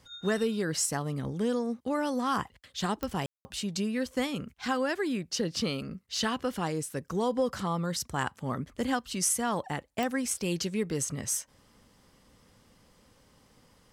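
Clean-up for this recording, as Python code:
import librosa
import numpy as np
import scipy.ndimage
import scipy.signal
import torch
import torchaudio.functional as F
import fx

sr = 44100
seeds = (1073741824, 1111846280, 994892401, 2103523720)

y = fx.fix_declick_ar(x, sr, threshold=10.0)
y = fx.fix_ambience(y, sr, seeds[0], print_start_s=11.45, print_end_s=11.95, start_s=3.26, end_s=3.45)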